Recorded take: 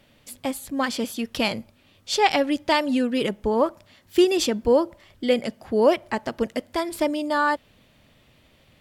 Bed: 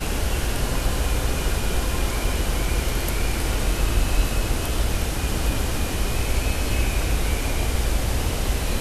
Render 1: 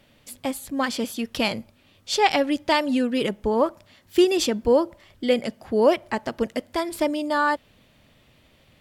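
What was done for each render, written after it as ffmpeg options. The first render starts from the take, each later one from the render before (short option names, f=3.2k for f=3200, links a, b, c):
-af anull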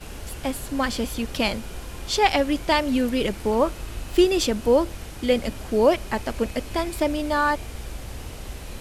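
-filter_complex "[1:a]volume=-12.5dB[a];[0:a][a]amix=inputs=2:normalize=0"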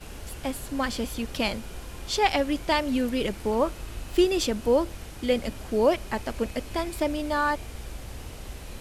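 -af "volume=-3.5dB"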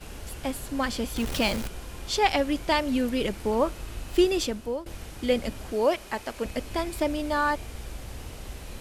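-filter_complex "[0:a]asettb=1/sr,asplit=3[a][b][c];[a]atrim=end=1.164[d];[b]atrim=start=1.16:end=1.68,asetpts=PTS-STARTPTS,afade=t=in:d=0.004:c=qsin,afade=t=out:st=0.516:d=0.004:c=qsin,aeval=exprs='val(0)+0.5*0.0316*sgn(val(0))':c=same[e];[c]atrim=start=1.676[f];[d][e]acrossfade=d=0.004:c1=hsin:c2=qsin[g];[g][f]acrossfade=d=0.004:c1=qsin:c2=hsin,asettb=1/sr,asplit=3[h][i][j];[h]atrim=end=5.724[k];[i]atrim=start=5.72:end=6.45,asetpts=PTS-STARTPTS,afade=t=in:d=0.004:c=qsin,afade=t=out:st=0.726:d=0.004:c=qsin,lowshelf=f=230:g=-11.5[l];[j]atrim=start=6.446[m];[k][l]acrossfade=d=0.004:c1=hsin:c2=qsin[n];[n][m]acrossfade=d=0.004:c1=qsin:c2=hsin,asplit=2[o][p];[o]atrim=end=4.86,asetpts=PTS-STARTPTS,afade=t=out:st=4.31:d=0.55:silence=0.133352[q];[p]atrim=start=4.86,asetpts=PTS-STARTPTS,afade=t=in:d=0.004:c=hsin:silence=0.133352[r];[q][r]concat=n=2:v=0:a=1"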